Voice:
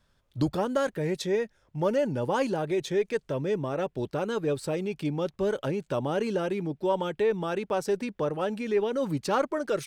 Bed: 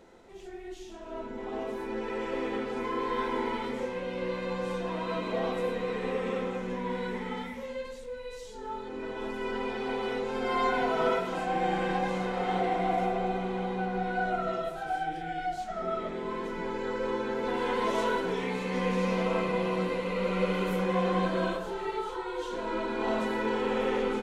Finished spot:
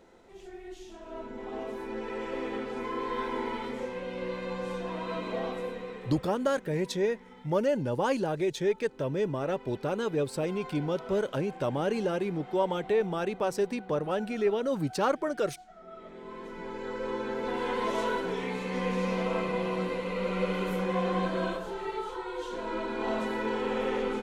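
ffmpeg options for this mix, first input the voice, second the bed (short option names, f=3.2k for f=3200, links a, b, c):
-filter_complex "[0:a]adelay=5700,volume=-1dB[a];[1:a]volume=13dB,afade=t=out:st=5.34:d=0.92:silence=0.188365,afade=t=in:st=15.86:d=1.41:silence=0.177828[b];[a][b]amix=inputs=2:normalize=0"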